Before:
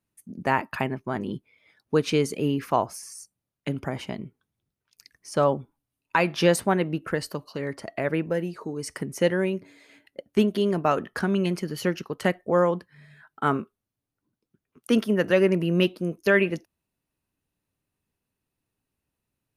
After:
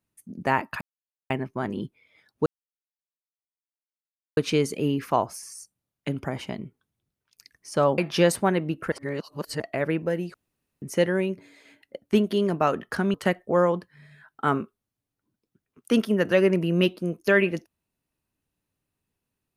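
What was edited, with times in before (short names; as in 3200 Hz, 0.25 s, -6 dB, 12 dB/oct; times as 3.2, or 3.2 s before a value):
0.81 insert silence 0.49 s
1.97 insert silence 1.91 s
5.58–6.22 cut
7.16–7.84 reverse
8.58–9.06 room tone
11.38–12.13 cut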